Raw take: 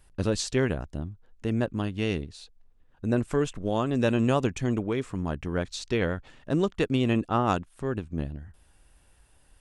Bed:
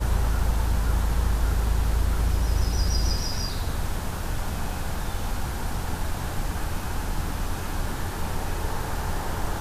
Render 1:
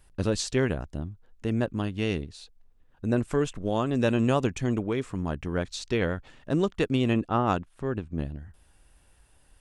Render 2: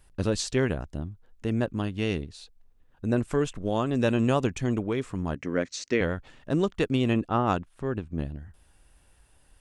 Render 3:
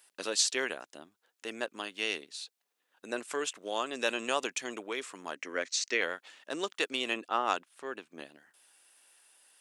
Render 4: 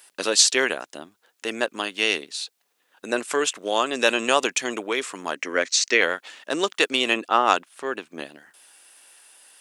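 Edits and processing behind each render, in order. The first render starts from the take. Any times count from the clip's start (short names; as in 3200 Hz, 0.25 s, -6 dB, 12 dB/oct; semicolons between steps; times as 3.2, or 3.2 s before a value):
7.14–8.19 high shelf 5700 Hz -9.5 dB
5.35–6.01 speaker cabinet 170–8300 Hz, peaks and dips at 270 Hz +6 dB, 530 Hz +5 dB, 850 Hz -7 dB, 2000 Hz +8 dB, 3500 Hz -6 dB, 6100 Hz +5 dB
Bessel high-pass 470 Hz, order 4; tilt shelf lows -6 dB, about 1500 Hz
gain +11 dB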